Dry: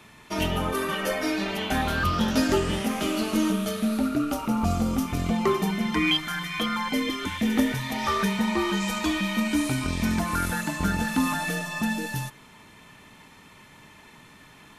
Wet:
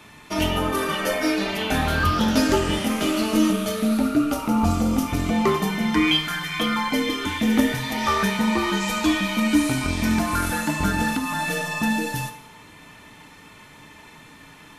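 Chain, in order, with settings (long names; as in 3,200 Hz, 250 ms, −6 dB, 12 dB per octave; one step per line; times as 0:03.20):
0:11.09–0:11.51: downward compressor, threshold −26 dBFS, peak gain reduction 7.5 dB
feedback delay network reverb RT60 0.83 s, low-frequency decay 0.7×, high-frequency decay 0.8×, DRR 5.5 dB
level +3 dB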